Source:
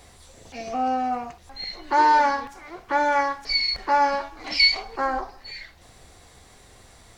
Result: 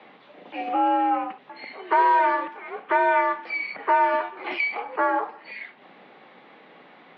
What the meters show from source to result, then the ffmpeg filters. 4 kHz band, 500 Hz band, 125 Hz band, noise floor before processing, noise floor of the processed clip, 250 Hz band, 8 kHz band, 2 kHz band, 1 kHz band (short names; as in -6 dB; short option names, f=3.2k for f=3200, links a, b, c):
-18.5 dB, +2.0 dB, n/a, -52 dBFS, -52 dBFS, +1.0 dB, under -30 dB, 0.0 dB, +0.5 dB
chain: -filter_complex "[0:a]acrossover=split=890|2500[a][b][c];[a]acompressor=threshold=-25dB:ratio=4[d];[b]acompressor=threshold=-29dB:ratio=4[e];[c]acompressor=threshold=-38dB:ratio=4[f];[d][e][f]amix=inputs=3:normalize=0,highpass=f=150:t=q:w=0.5412,highpass=f=150:t=q:w=1.307,lowpass=f=3.1k:t=q:w=0.5176,lowpass=f=3.1k:t=q:w=0.7071,lowpass=f=3.1k:t=q:w=1.932,afreqshift=60,volume=4.5dB"